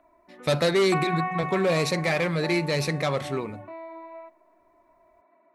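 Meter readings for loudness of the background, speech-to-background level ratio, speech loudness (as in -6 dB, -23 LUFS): -34.5 LUFS, 9.5 dB, -25.0 LUFS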